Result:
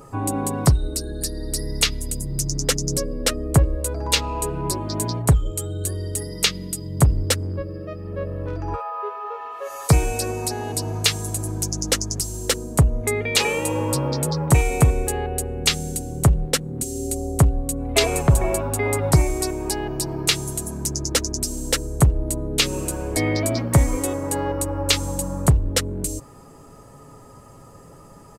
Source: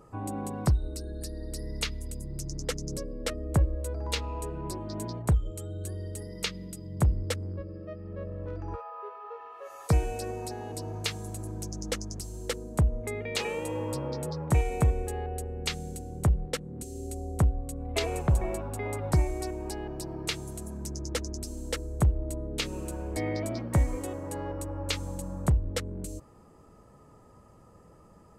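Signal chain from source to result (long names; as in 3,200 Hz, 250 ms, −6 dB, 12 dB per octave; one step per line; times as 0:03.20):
high-shelf EQ 4,100 Hz +8 dB
comb filter 7.3 ms, depth 37%
in parallel at −5 dB: hard clipping −20.5 dBFS, distortion −13 dB
on the sum: level +5.5 dB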